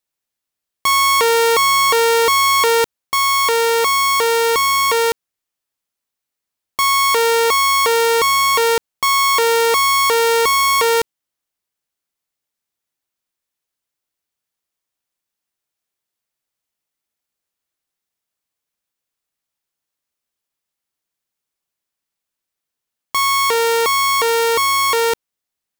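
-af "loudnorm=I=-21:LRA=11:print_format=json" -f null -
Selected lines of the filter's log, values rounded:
"input_i" : "-14.4",
"input_tp" : "-6.8",
"input_lra" : "3.8",
"input_thresh" : "-24.6",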